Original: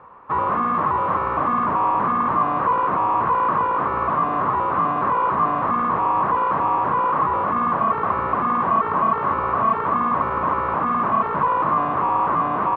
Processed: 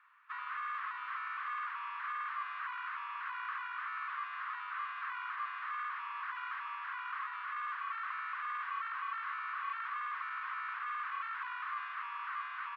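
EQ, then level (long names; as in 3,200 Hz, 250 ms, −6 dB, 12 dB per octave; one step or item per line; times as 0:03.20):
Butterworth high-pass 1,500 Hz 36 dB per octave
−5.5 dB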